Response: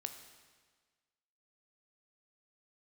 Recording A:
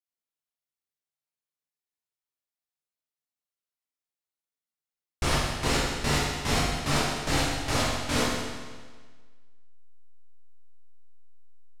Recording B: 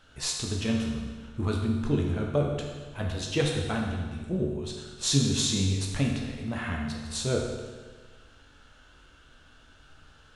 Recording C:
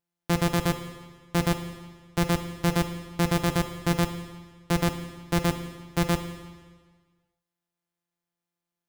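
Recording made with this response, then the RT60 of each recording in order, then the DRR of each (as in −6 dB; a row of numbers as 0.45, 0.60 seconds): C; 1.5, 1.5, 1.5 seconds; −6.0, −0.5, 6.5 decibels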